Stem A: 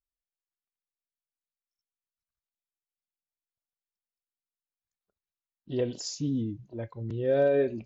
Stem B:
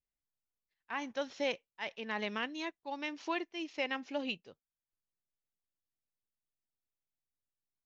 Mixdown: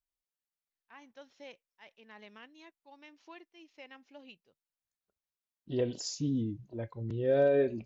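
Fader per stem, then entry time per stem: −2.0, −15.5 decibels; 0.00, 0.00 seconds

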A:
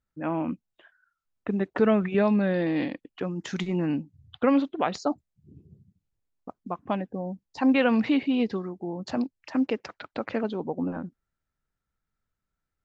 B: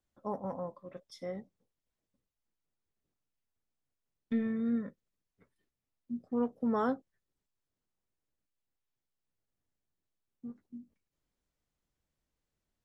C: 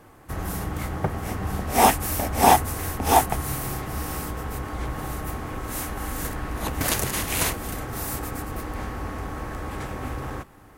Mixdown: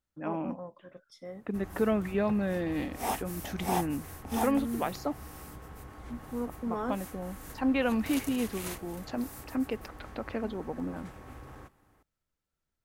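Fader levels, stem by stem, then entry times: −6.0, −3.5, −15.5 decibels; 0.00, 0.00, 1.25 seconds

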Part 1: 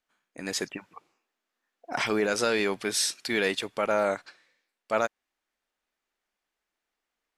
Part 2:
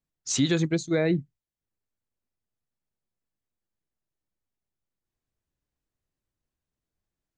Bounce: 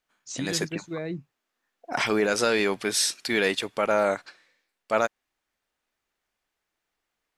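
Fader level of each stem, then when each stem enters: +2.5, −9.0 decibels; 0.00, 0.00 seconds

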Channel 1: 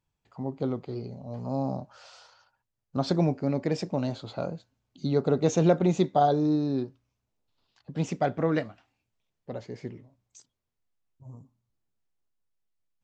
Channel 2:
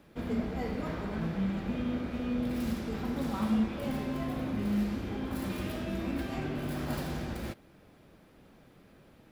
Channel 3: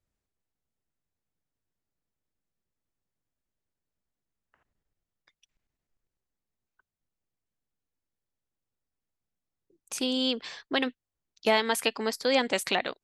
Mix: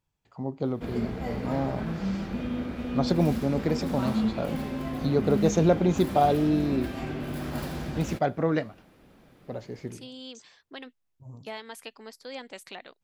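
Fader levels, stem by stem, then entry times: +0.5, +1.5, −15.0 decibels; 0.00, 0.65, 0.00 seconds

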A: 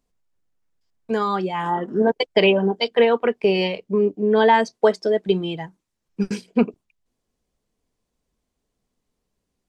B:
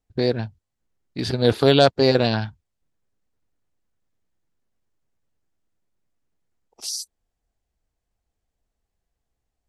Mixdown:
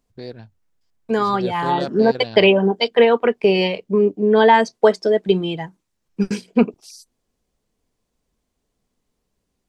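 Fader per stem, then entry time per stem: +3.0, −13.0 decibels; 0.00, 0.00 seconds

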